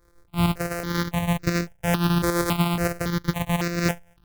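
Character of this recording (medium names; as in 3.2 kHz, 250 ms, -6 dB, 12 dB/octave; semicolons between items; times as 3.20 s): a buzz of ramps at a fixed pitch in blocks of 256 samples; tremolo saw up 8.7 Hz, depth 50%; notches that jump at a steady rate 3.6 Hz 760–3200 Hz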